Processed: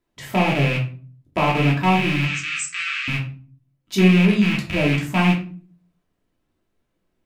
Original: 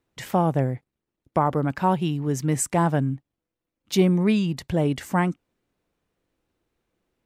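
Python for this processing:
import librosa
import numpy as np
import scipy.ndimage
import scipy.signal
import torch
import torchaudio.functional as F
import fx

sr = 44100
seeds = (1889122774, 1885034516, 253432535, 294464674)

y = fx.rattle_buzz(x, sr, strikes_db=-34.0, level_db=-13.0)
y = fx.brickwall_bandpass(y, sr, low_hz=1100.0, high_hz=8300.0, at=(2.25, 3.08))
y = fx.room_shoebox(y, sr, seeds[0], volume_m3=320.0, walls='furnished', distance_m=2.9)
y = y * librosa.db_to_amplitude(-4.0)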